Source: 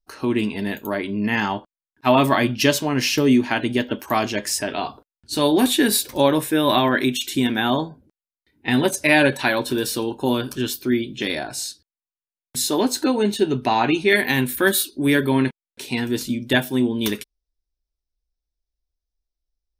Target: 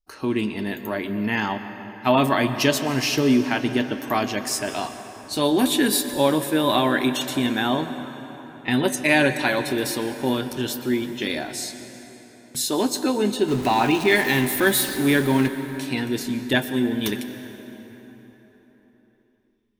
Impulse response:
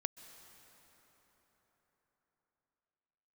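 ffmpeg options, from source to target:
-filter_complex "[0:a]asettb=1/sr,asplit=3[a][b][c];[a]atrim=end=13.484[d];[b]atrim=start=13.48:end=15.48,asetpts=PTS-STARTPTS,afade=t=in:d=0.004:c=qsin,afade=t=out:st=1.996:d=0.004:c=qsin,aeval=exprs='val(0)+0.5*0.0531*sgn(val(0))':c=same[e];[c]atrim=start=15.476[f];[d][e]acrossfade=d=0.004:c1=hsin:c2=qsin[g];[g][f]acrossfade=d=0.004:c1=qsin:c2=hsin[h];[1:a]atrim=start_sample=2205,asetrate=48510,aresample=44100[i];[h][i]afir=irnorm=-1:irlink=0"

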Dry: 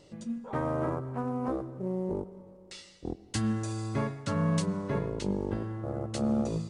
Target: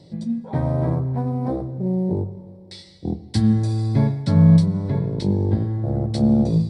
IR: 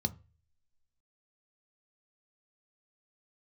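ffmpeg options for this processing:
-filter_complex "[0:a]asettb=1/sr,asplit=3[a][b][c];[a]atrim=end=4.564[d];[b]atrim=start=4.56:end=5.18,asetpts=PTS-STARTPTS,afade=t=in:d=0.004:c=qsin,afade=t=out:st=0.616:d=0.004:c=qsin,acompressor=threshold=-31dB:ratio=3[e];[c]atrim=start=5.176[f];[d][e]acrossfade=d=0.004:c1=hsin:c2=qsin[g];[g][f]acrossfade=d=0.004:c1=qsin:c2=hsin[h];[1:a]atrim=start_sample=2205,asetrate=41013,aresample=44100[i];[h][i]afir=irnorm=-1:irlink=0"

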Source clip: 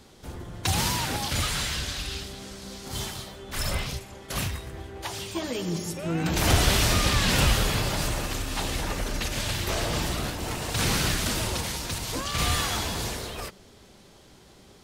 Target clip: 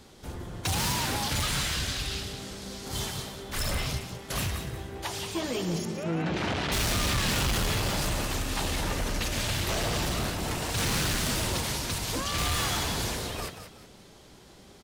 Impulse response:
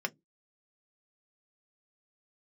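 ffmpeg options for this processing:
-filter_complex "[0:a]volume=25dB,asoftclip=hard,volume=-25dB,asettb=1/sr,asplit=3[a][b][c];[a]atrim=end=5.854[d];[b]atrim=start=5.85:end=6.72,asetpts=PTS-STARTPTS,afade=t=in:d=0.004:c=qsin,afade=t=out:st=0.866:d=0.004:c=qsin,highpass=110,lowpass=3.3k[e];[c]atrim=start=6.716[f];[d][e]acrossfade=d=0.004:c1=hsin:c2=qsin[g];[g][f]acrossfade=d=0.004:c1=qsin:c2=hsin,asplit=2[h][i];[i]asplit=3[j][k][l];[j]adelay=182,afreqshift=49,volume=-9.5dB[m];[k]adelay=364,afreqshift=98,volume=-19.7dB[n];[l]adelay=546,afreqshift=147,volume=-29.8dB[o];[m][n][o]amix=inputs=3:normalize=0[p];[h][p]amix=inputs=2:normalize=0"

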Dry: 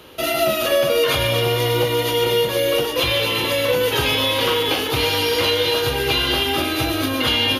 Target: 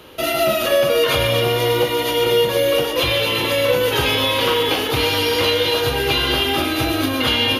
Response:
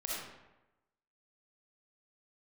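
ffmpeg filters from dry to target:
-filter_complex "[0:a]asplit=2[a][b];[1:a]atrim=start_sample=2205,lowpass=3.8k[c];[b][c]afir=irnorm=-1:irlink=0,volume=-11.5dB[d];[a][d]amix=inputs=2:normalize=0"

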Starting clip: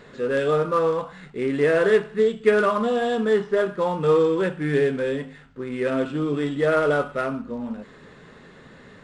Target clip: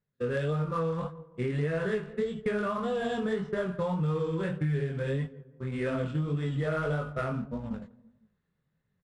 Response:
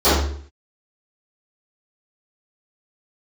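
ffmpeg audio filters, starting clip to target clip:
-filter_complex "[0:a]areverse,acompressor=mode=upward:threshold=-27dB:ratio=2.5,areverse,agate=range=-43dB:threshold=-29dB:ratio=16:detection=peak,lowshelf=f=210:t=q:w=1.5:g=10,asplit=2[a][b];[b]adelay=167,lowpass=f=1.2k:p=1,volume=-21dB,asplit=2[c][d];[d]adelay=167,lowpass=f=1.2k:p=1,volume=0.47,asplit=2[e][f];[f]adelay=167,lowpass=f=1.2k:p=1,volume=0.47[g];[a][c][e][g]amix=inputs=4:normalize=0,flanger=delay=18.5:depth=6.5:speed=1.7,acompressor=threshold=-27dB:ratio=6"

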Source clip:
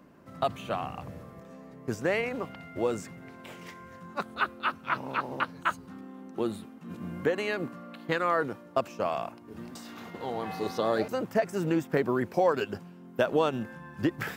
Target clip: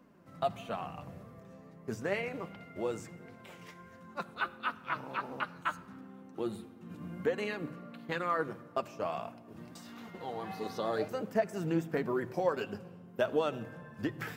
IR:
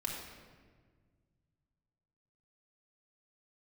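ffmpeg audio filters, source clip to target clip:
-filter_complex "[0:a]flanger=delay=3.9:depth=3:regen=49:speed=1.5:shape=triangular,asplit=2[a][b];[b]equalizer=f=120:w=1.5:g=11.5[c];[1:a]atrim=start_sample=2205,adelay=10[d];[c][d]afir=irnorm=-1:irlink=0,volume=-17dB[e];[a][e]amix=inputs=2:normalize=0,volume=-2dB"

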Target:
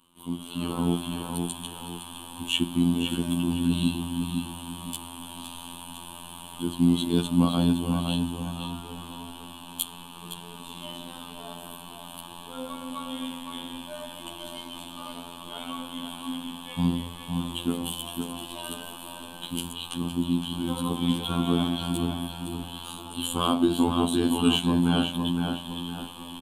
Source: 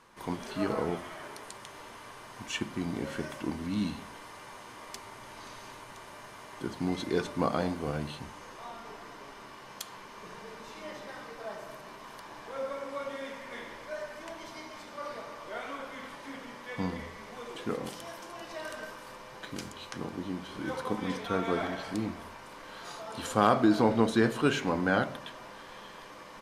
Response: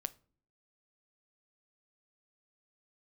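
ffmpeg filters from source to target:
-filter_complex "[0:a]afftfilt=real='hypot(re,im)*cos(PI*b)':imag='0':win_size=2048:overlap=0.75,asplit=2[a][b];[b]adelay=512,lowpass=f=4k:p=1,volume=-5dB,asplit=2[c][d];[d]adelay=512,lowpass=f=4k:p=1,volume=0.39,asplit=2[e][f];[f]adelay=512,lowpass=f=4k:p=1,volume=0.39,asplit=2[g][h];[h]adelay=512,lowpass=f=4k:p=1,volume=0.39,asplit=2[i][j];[j]adelay=512,lowpass=f=4k:p=1,volume=0.39[k];[a][c][e][g][i][k]amix=inputs=6:normalize=0,dynaudnorm=f=240:g=5:m=11dB,firequalizer=gain_entry='entry(130,0);entry(240,7);entry(470,-11);entry(1100,-3);entry(1900,-21);entry(3000,11);entry(5300,-16);entry(8600,10)':delay=0.05:min_phase=1,volume=-1.5dB"

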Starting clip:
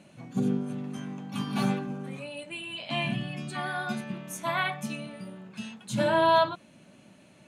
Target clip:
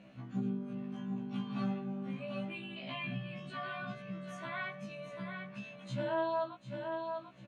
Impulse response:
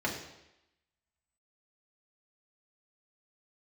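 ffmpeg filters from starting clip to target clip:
-af "aecho=1:1:743|1486|2229:0.299|0.0657|0.0144,acompressor=threshold=-41dB:ratio=2,lowpass=3.2k,equalizer=f=380:w=6.4:g=-5,bandreject=f=860:w=12,afftfilt=real='re*1.73*eq(mod(b,3),0)':imag='im*1.73*eq(mod(b,3),0)':win_size=2048:overlap=0.75,volume=1dB"

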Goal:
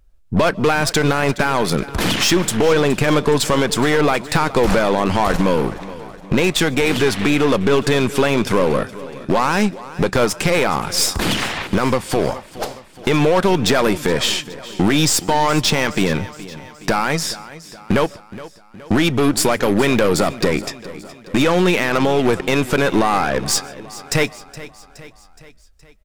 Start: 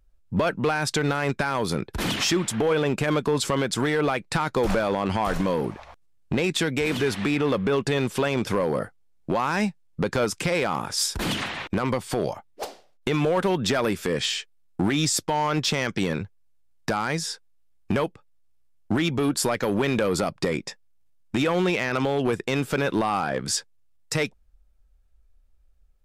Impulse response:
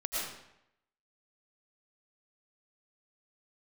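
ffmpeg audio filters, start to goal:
-filter_complex "[0:a]acontrast=90,aeval=exprs='0.335*(cos(1*acos(clip(val(0)/0.335,-1,1)))-cos(1*PI/2))+0.0531*(cos(4*acos(clip(val(0)/0.335,-1,1)))-cos(4*PI/2))':c=same,aecho=1:1:419|838|1257|1676|2095:0.141|0.0777|0.0427|0.0235|0.0129,asplit=2[a][b];[1:a]atrim=start_sample=2205,afade=t=out:st=0.17:d=0.01,atrim=end_sample=7938,adelay=33[c];[b][c]afir=irnorm=-1:irlink=0,volume=-26dB[d];[a][d]amix=inputs=2:normalize=0"

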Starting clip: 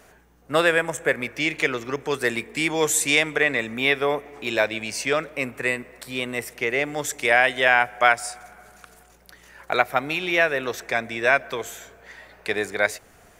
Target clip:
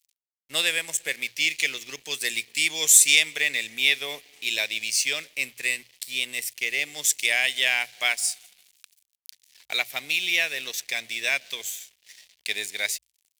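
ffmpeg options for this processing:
-af "aeval=exprs='sgn(val(0))*max(abs(val(0))-0.00562,0)':c=same,aexciter=amount=11:drive=5.7:freq=2.1k,bandreject=f=60:t=h:w=6,bandreject=f=120:t=h:w=6,volume=-15.5dB"

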